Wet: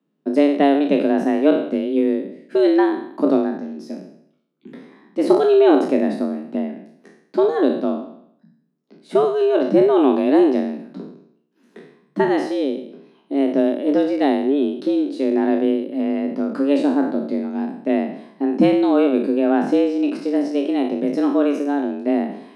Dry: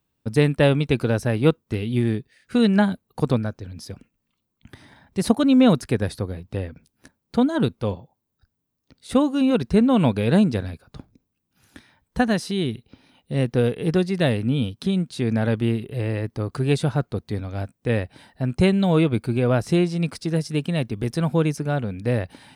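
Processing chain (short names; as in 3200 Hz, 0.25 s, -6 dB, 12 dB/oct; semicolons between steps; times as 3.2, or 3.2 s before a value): spectral trails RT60 0.68 s; frequency shift +140 Hz; RIAA curve playback; gain -2 dB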